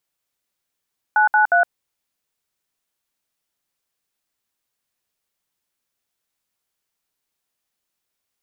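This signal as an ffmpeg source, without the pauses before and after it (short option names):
-f lavfi -i "aevalsrc='0.188*clip(min(mod(t,0.179),0.115-mod(t,0.179))/0.002,0,1)*(eq(floor(t/0.179),0)*(sin(2*PI*852*mod(t,0.179))+sin(2*PI*1477*mod(t,0.179)))+eq(floor(t/0.179),1)*(sin(2*PI*852*mod(t,0.179))+sin(2*PI*1477*mod(t,0.179)))+eq(floor(t/0.179),2)*(sin(2*PI*697*mod(t,0.179))+sin(2*PI*1477*mod(t,0.179))))':d=0.537:s=44100"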